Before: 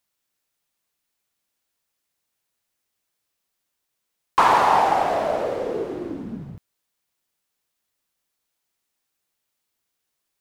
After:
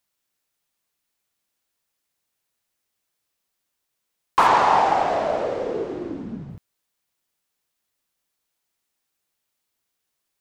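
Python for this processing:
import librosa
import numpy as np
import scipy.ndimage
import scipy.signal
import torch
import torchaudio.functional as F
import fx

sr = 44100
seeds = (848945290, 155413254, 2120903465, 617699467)

y = fx.lowpass(x, sr, hz=7700.0, slope=24, at=(4.47, 6.5))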